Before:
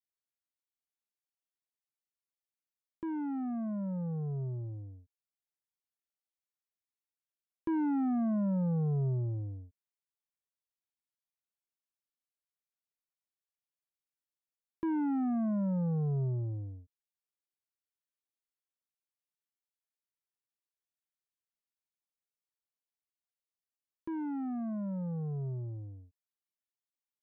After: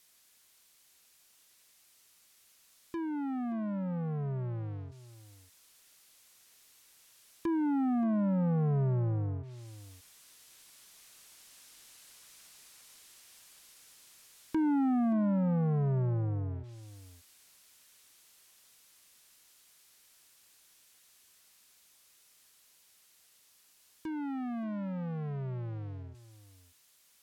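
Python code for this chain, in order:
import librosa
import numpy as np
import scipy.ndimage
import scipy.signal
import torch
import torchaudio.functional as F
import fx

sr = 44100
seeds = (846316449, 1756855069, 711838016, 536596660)

p1 = fx.doppler_pass(x, sr, speed_mps=10, closest_m=13.0, pass_at_s=12.1)
p2 = fx.high_shelf(p1, sr, hz=2000.0, db=9.0)
p3 = fx.notch(p2, sr, hz=930.0, q=12.0)
p4 = fx.power_curve(p3, sr, exponent=0.5)
p5 = fx.env_lowpass_down(p4, sr, base_hz=1100.0, full_db=-41.0)
p6 = p5 + fx.echo_single(p5, sr, ms=577, db=-17.0, dry=0)
y = F.gain(torch.from_numpy(p6), 8.5).numpy()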